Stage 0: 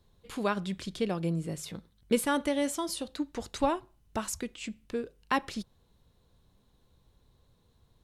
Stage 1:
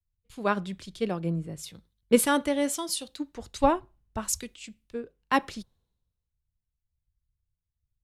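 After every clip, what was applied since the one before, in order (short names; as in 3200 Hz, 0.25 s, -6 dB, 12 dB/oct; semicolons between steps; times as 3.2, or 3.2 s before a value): three-band expander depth 100%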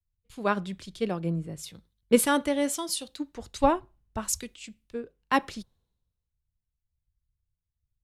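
nothing audible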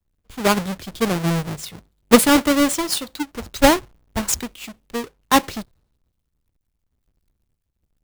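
half-waves squared off; gain +5 dB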